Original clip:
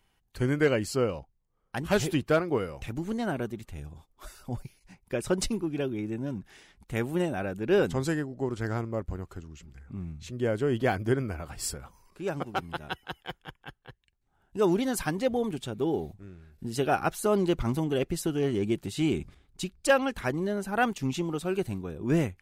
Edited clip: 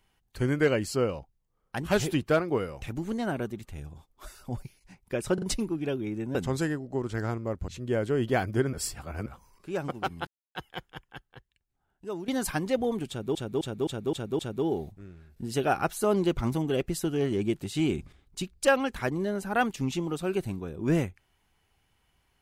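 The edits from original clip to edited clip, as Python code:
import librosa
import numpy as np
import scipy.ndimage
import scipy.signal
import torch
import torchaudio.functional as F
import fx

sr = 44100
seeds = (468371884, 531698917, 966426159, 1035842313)

y = fx.edit(x, sr, fx.stutter(start_s=5.34, slice_s=0.04, count=3),
    fx.cut(start_s=6.27, length_s=1.55),
    fx.cut(start_s=9.15, length_s=1.05),
    fx.reverse_span(start_s=11.25, length_s=0.53),
    fx.silence(start_s=12.79, length_s=0.28),
    fx.fade_out_to(start_s=13.6, length_s=1.2, floor_db=-15.5),
    fx.repeat(start_s=15.61, length_s=0.26, count=6), tone=tone)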